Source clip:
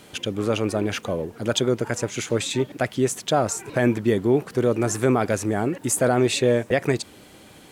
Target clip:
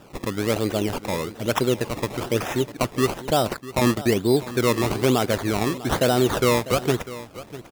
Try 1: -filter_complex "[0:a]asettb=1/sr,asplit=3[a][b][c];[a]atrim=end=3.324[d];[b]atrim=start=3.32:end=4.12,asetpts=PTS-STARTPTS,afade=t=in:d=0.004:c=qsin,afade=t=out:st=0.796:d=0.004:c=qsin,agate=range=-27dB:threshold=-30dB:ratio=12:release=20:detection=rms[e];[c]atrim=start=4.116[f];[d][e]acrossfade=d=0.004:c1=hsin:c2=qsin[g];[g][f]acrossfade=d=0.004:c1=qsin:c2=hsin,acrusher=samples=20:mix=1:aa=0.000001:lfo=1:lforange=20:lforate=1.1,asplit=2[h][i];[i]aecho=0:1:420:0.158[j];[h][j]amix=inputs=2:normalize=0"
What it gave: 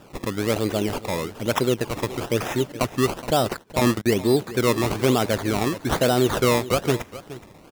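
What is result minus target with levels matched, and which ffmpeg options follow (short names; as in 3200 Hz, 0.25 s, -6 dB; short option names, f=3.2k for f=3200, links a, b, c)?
echo 0.228 s early
-filter_complex "[0:a]asettb=1/sr,asplit=3[a][b][c];[a]atrim=end=3.324[d];[b]atrim=start=3.32:end=4.12,asetpts=PTS-STARTPTS,afade=t=in:d=0.004:c=qsin,afade=t=out:st=0.796:d=0.004:c=qsin,agate=range=-27dB:threshold=-30dB:ratio=12:release=20:detection=rms[e];[c]atrim=start=4.116[f];[d][e]acrossfade=d=0.004:c1=hsin:c2=qsin[g];[g][f]acrossfade=d=0.004:c1=qsin:c2=hsin,acrusher=samples=20:mix=1:aa=0.000001:lfo=1:lforange=20:lforate=1.1,asplit=2[h][i];[i]aecho=0:1:648:0.158[j];[h][j]amix=inputs=2:normalize=0"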